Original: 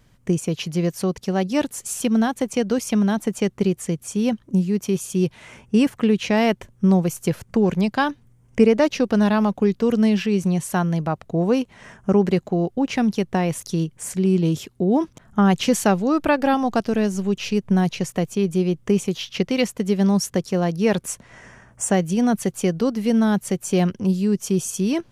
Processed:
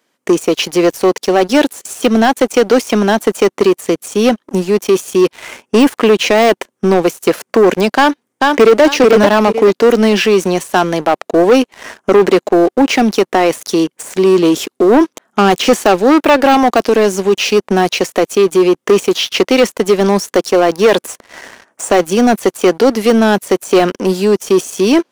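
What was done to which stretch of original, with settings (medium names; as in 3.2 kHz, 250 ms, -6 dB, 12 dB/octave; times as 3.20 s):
7.96–8.82 s: echo throw 440 ms, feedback 20%, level -4.5 dB
whole clip: de-esser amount 75%; high-pass 290 Hz 24 dB/octave; waveshaping leveller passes 3; trim +5.5 dB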